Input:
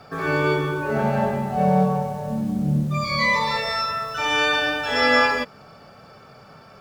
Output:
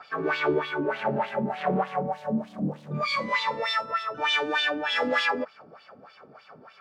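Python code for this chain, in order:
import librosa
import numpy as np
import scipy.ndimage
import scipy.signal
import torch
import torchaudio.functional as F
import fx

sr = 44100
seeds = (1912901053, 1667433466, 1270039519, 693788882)

p1 = fx.rider(x, sr, range_db=10, speed_s=2.0)
p2 = x + (p1 * 10.0 ** (2.0 / 20.0))
p3 = 10.0 ** (-13.5 / 20.0) * np.tanh(p2 / 10.0 ** (-13.5 / 20.0))
y = fx.wah_lfo(p3, sr, hz=3.3, low_hz=260.0, high_hz=3500.0, q=2.6)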